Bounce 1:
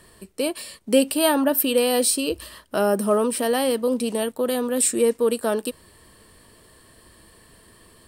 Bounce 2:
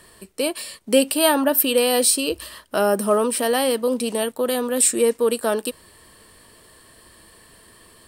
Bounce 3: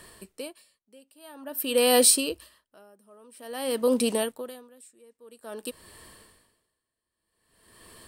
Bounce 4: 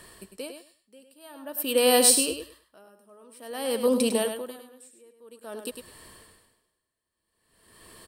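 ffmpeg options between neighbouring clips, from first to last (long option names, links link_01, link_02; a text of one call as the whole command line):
ffmpeg -i in.wav -af "lowshelf=frequency=410:gain=-5.5,volume=3.5dB" out.wav
ffmpeg -i in.wav -af "aeval=exprs='val(0)*pow(10,-37*(0.5-0.5*cos(2*PI*0.5*n/s))/20)':channel_layout=same" out.wav
ffmpeg -i in.wav -af "aecho=1:1:102|204|306:0.422|0.0717|0.0122" out.wav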